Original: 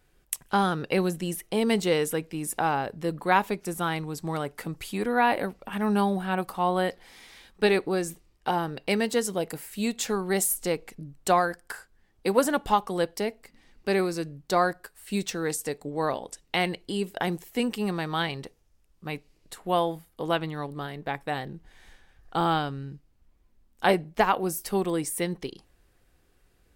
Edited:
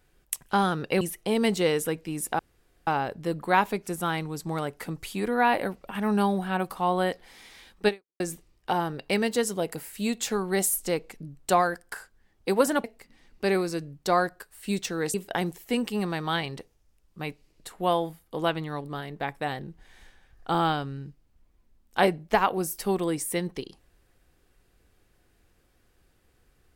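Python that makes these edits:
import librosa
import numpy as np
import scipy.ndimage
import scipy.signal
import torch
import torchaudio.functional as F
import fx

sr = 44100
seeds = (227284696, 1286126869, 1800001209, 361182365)

y = fx.edit(x, sr, fx.cut(start_s=1.01, length_s=0.26),
    fx.insert_room_tone(at_s=2.65, length_s=0.48),
    fx.fade_out_span(start_s=7.66, length_s=0.32, curve='exp'),
    fx.cut(start_s=12.62, length_s=0.66),
    fx.cut(start_s=15.58, length_s=1.42), tone=tone)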